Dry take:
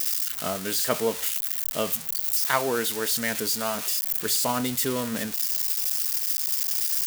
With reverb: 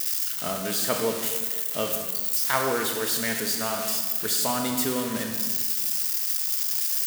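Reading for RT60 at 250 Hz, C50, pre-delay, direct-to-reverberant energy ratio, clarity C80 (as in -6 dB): 1.8 s, 4.5 dB, 29 ms, 3.5 dB, 6.0 dB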